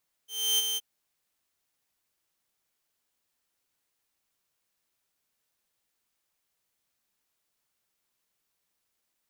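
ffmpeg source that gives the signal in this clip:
ffmpeg -f lavfi -i "aevalsrc='0.112*(2*mod(3120*t,1)-1)':duration=0.522:sample_rate=44100,afade=type=in:duration=0.304,afade=type=out:start_time=0.304:duration=0.026:silence=0.473,afade=type=out:start_time=0.49:duration=0.032" out.wav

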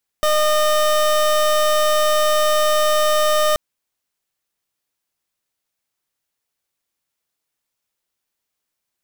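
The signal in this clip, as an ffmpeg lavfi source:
ffmpeg -f lavfi -i "aevalsrc='0.158*(2*lt(mod(610*t,1),0.27)-1)':duration=3.33:sample_rate=44100" out.wav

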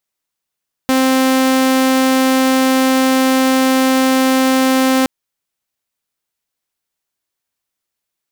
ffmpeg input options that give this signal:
ffmpeg -f lavfi -i "aevalsrc='0.398*(2*mod(262*t,1)-1)':duration=4.17:sample_rate=44100" out.wav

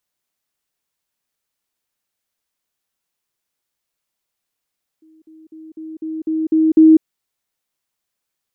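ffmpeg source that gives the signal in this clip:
ffmpeg -f lavfi -i "aevalsrc='pow(10,(-46.5+6*floor(t/0.25))/20)*sin(2*PI*317*t)*clip(min(mod(t,0.25),0.2-mod(t,0.25))/0.005,0,1)':duration=2:sample_rate=44100" out.wav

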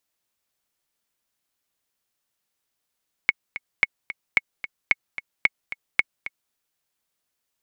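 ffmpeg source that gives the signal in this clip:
ffmpeg -f lavfi -i "aevalsrc='pow(10,(-3.5-14*gte(mod(t,2*60/222),60/222))/20)*sin(2*PI*2200*mod(t,60/222))*exp(-6.91*mod(t,60/222)/0.03)':duration=3.24:sample_rate=44100" out.wav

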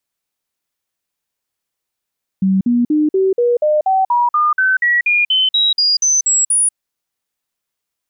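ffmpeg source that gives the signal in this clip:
ffmpeg -f lavfi -i "aevalsrc='0.299*clip(min(mod(t,0.24),0.19-mod(t,0.24))/0.005,0,1)*sin(2*PI*191*pow(2,floor(t/0.24)/3)*mod(t,0.24))':duration=4.32:sample_rate=44100" out.wav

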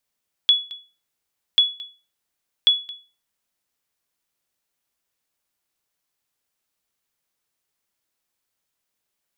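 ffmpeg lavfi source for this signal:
ffmpeg -f lavfi -i "aevalsrc='0.422*(sin(2*PI*3390*mod(t,1.09))*exp(-6.91*mod(t,1.09)/0.33)+0.0944*sin(2*PI*3390*max(mod(t,1.09)-0.22,0))*exp(-6.91*max(mod(t,1.09)-0.22,0)/0.33))':duration=3.27:sample_rate=44100" out.wav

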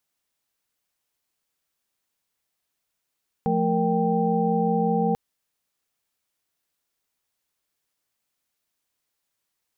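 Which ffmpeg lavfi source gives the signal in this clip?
ffmpeg -f lavfi -i "aevalsrc='0.0562*(sin(2*PI*174.61*t)+sin(2*PI*220*t)+sin(2*PI*466.16*t)+sin(2*PI*783.99*t))':duration=1.69:sample_rate=44100" out.wav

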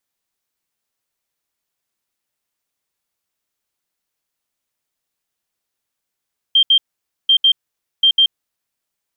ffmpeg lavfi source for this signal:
ffmpeg -f lavfi -i "aevalsrc='0.398*sin(2*PI*3170*t)*clip(min(mod(mod(t,0.74),0.15),0.08-mod(mod(t,0.74),0.15))/0.005,0,1)*lt(mod(t,0.74),0.3)':duration=2.22:sample_rate=44100" out.wav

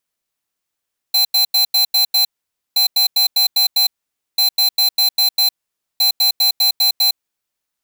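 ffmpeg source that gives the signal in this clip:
ffmpeg -f lavfi -i "aevalsrc='0.211*(2*lt(mod(4080*t,1),0.5)-1)*clip(min(mod(mod(t,1.62),0.2),0.11-mod(mod(t,1.62),0.2))/0.005,0,1)*lt(mod(t,1.62),1.2)':duration=6.48:sample_rate=44100" out.wav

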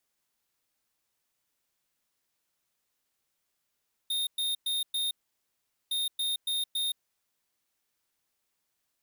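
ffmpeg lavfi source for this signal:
ffmpeg -f lavfi -i "aevalsrc='0.0316*(2*lt(mod(3680*t,1),0.5)-1)*clip(min(mod(mod(t,1.81),0.28),0.17-mod(mod(t,1.81),0.28))/0.005,0,1)*lt(mod(t,1.81),1.12)':duration=3.62:sample_rate=44100" out.wav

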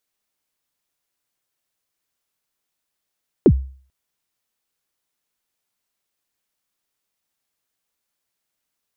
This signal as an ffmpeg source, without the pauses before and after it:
ffmpeg -f lavfi -i "aevalsrc='0.596*pow(10,-3*t/0.45)*sin(2*PI*(460*0.063/log(66/460)*(exp(log(66/460)*min(t,0.063)/0.063)-1)+66*max(t-0.063,0)))':duration=0.44:sample_rate=44100" out.wav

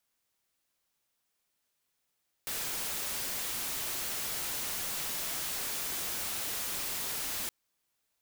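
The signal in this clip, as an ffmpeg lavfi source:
ffmpeg -f lavfi -i "anoisesrc=color=white:amplitude=0.0291:duration=5.02:sample_rate=44100:seed=1" out.wav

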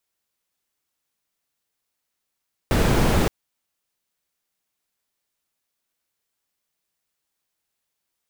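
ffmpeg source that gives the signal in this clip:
ffmpeg -f lavfi -i "anoisesrc=color=brown:amplitude=0.589:duration=0.57:sample_rate=44100:seed=1" out.wav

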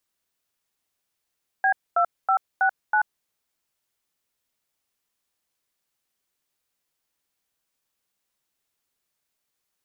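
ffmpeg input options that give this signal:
ffmpeg -f lavfi -i "aevalsrc='0.106*clip(min(mod(t,0.323),0.085-mod(t,0.323))/0.002,0,1)*(eq(floor(t/0.323),0)*(sin(2*PI*770*mod(t,0.323))+sin(2*PI*1633*mod(t,0.323)))+eq(floor(t/0.323),1)*(sin(2*PI*697*mod(t,0.323))+sin(2*PI*1336*mod(t,0.323)))+eq(floor(t/0.323),2)*(sin(2*PI*770*mod(t,0.323))+sin(2*PI*1336*mod(t,0.323)))+eq(floor(t/0.323),3)*(sin(2*PI*770*mod(t,0.323))+sin(2*PI*1477*mod(t,0.323)))+eq(floor(t/0.323),4)*(sin(2*PI*852*mod(t,0.323))+sin(2*PI*1477*mod(t,0.323))))':duration=1.615:sample_rate=44100" out.wav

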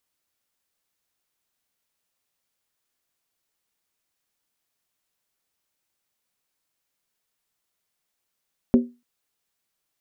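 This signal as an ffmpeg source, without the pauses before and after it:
ffmpeg -f lavfi -i "aevalsrc='0.355*pow(10,-3*t/0.27)*sin(2*PI*242*t)+0.141*pow(10,-3*t/0.214)*sin(2*PI*385.7*t)+0.0562*pow(10,-3*t/0.185)*sin(2*PI*516.9*t)+0.0224*pow(10,-3*t/0.178)*sin(2*PI*555.6*t)+0.00891*pow(10,-3*t/0.166)*sin(2*PI*642*t)':duration=0.29:sample_rate=44100" out.wav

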